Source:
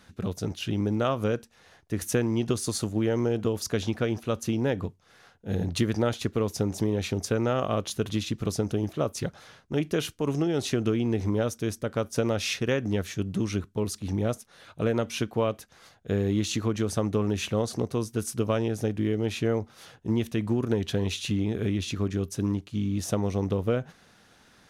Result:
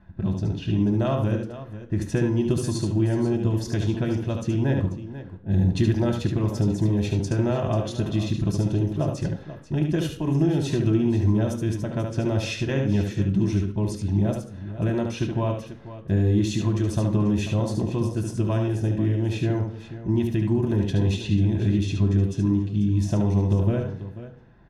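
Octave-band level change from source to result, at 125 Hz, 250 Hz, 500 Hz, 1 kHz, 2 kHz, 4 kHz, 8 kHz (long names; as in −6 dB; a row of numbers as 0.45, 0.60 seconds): +8.0, +4.5, −0.5, 0.0, −1.0, −2.5, −4.5 decibels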